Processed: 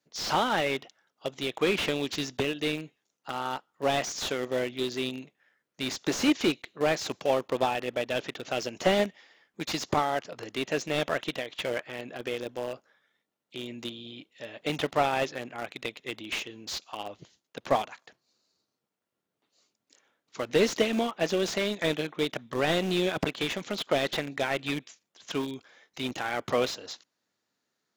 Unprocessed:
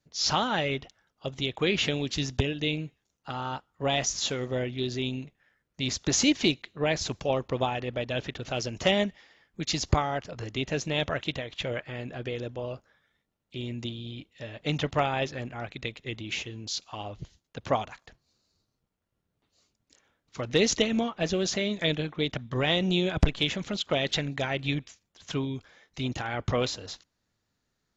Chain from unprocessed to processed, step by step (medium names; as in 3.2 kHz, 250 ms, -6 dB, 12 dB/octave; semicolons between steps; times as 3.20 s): high-pass 260 Hz 12 dB/octave; in parallel at -10.5 dB: bit crusher 5-bit; on the sum: slew-rate limiter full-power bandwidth 120 Hz